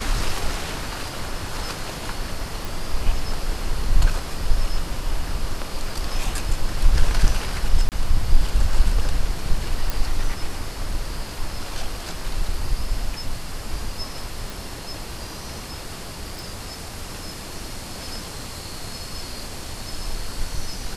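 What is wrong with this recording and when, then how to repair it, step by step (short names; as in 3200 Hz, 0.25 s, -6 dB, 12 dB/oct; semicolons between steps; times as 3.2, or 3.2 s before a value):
2.65 pop
7.89–7.92 gap 28 ms
9.9 pop
14.5 pop
16.39 pop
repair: de-click; interpolate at 7.89, 28 ms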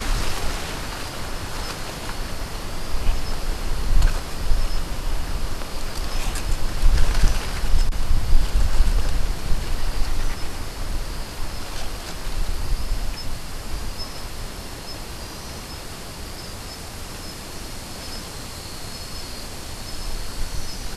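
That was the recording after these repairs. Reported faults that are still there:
none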